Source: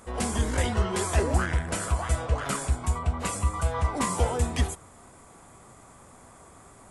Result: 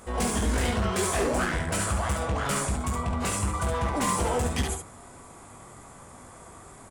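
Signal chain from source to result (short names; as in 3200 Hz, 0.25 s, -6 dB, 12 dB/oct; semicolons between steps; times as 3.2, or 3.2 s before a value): 1.11–1.6 bell 83 Hz -13.5 dB 0.95 oct; overloaded stage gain 25.5 dB; early reflections 20 ms -6.5 dB, 70 ms -4.5 dB; gain +2 dB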